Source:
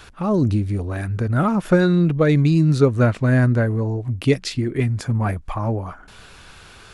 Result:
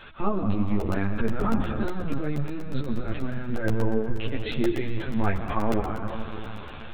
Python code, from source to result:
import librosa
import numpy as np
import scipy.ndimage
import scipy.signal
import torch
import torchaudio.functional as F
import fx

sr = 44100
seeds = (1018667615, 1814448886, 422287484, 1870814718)

y = fx.over_compress(x, sr, threshold_db=-20.0, ratio=-0.5)
y = fx.low_shelf(y, sr, hz=89.0, db=-6.5)
y = fx.rev_freeverb(y, sr, rt60_s=4.0, hf_ratio=0.8, predelay_ms=65, drr_db=5.0)
y = fx.lpc_vocoder(y, sr, seeds[0], excitation='pitch_kept', order=16)
y = fx.hum_notches(y, sr, base_hz=60, count=3)
y = fx.buffer_crackle(y, sr, first_s=0.68, period_s=0.12, block=64, kind='repeat')
y = fx.ensemble(y, sr)